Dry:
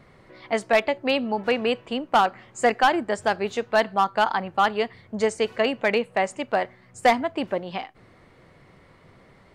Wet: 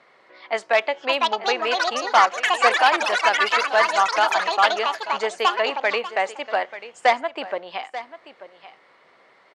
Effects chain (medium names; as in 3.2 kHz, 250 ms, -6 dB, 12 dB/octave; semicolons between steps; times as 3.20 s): on a send: delay 887 ms -14.5 dB; on the sum: ever faster or slower copies 741 ms, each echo +7 st, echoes 3; band-pass 590–5900 Hz; trim +2.5 dB